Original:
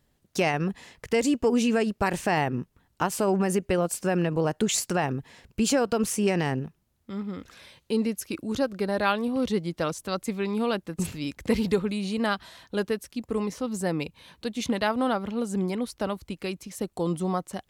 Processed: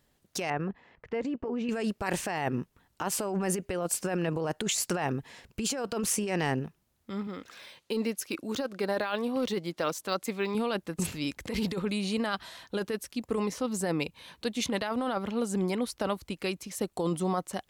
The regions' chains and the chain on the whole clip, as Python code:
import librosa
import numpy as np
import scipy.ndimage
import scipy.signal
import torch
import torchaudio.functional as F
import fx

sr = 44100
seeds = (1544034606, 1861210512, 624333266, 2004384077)

y = fx.chain(x, sr, fx.lowpass(hz=1800.0, slope=12),
    fx.level_steps(step_db=10), at=(0.5, 1.69))
y = fx.chain(y, sr, fx.highpass(hz=240.0, slope=6),
    fx.resample_linear(factor=2), at=(7.27, 10.55))
y = fx.low_shelf(y, sr, hz=270.0, db=-6.0)
y = fx.over_compress(y, sr, threshold_db=-29.0, ratio=-1.0)